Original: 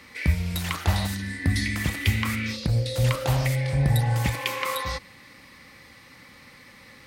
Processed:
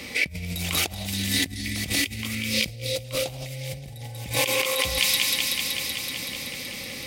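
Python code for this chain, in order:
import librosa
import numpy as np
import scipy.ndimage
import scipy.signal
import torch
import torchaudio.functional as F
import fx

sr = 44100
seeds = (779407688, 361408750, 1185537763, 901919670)

y = fx.band_shelf(x, sr, hz=1300.0, db=-11.5, octaves=1.3)
y = fx.notch(y, sr, hz=4200.0, q=23.0)
y = fx.echo_wet_highpass(y, sr, ms=189, feedback_pct=79, hz=2500.0, wet_db=-3.5)
y = fx.over_compress(y, sr, threshold_db=-35.0, ratio=-1.0)
y = fx.low_shelf(y, sr, hz=220.0, db=-5.0)
y = F.gain(torch.from_numpy(y), 7.0).numpy()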